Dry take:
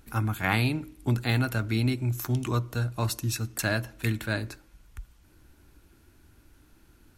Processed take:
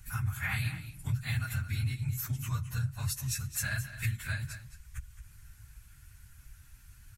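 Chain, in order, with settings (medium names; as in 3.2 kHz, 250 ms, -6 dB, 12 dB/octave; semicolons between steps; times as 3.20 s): phase randomisation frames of 50 ms; FFT filter 130 Hz 0 dB, 340 Hz -28 dB, 1.8 kHz -1 dB, 3.8 kHz -6 dB, 7.7 kHz +3 dB, 14 kHz 0 dB; compression 2:1, threshold -42 dBFS, peak gain reduction 12.5 dB; on a send: delay 217 ms -12.5 dB; on the sum: trim +5 dB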